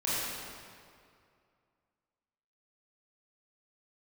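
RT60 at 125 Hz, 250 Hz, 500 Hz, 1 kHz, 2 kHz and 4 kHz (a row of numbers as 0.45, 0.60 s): 2.4, 2.3, 2.3, 2.3, 2.0, 1.6 s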